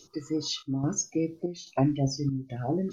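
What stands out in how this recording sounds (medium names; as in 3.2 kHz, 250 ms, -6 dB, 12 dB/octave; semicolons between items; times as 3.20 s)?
chopped level 1.2 Hz, depth 65%, duty 75%; phasing stages 2, 3 Hz, lowest notch 730–2100 Hz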